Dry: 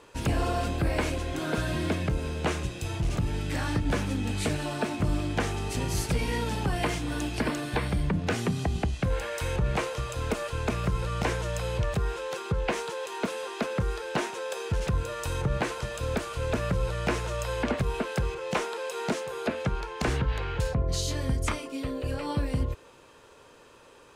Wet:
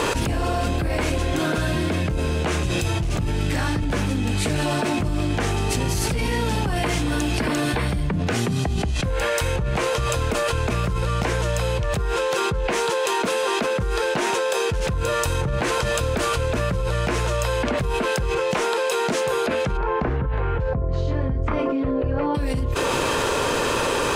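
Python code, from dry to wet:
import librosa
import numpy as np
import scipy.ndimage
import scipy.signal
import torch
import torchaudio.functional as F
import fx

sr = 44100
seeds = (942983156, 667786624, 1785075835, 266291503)

y = fx.lowpass(x, sr, hz=1400.0, slope=12, at=(19.76, 22.34), fade=0.02)
y = fx.env_flatten(y, sr, amount_pct=100)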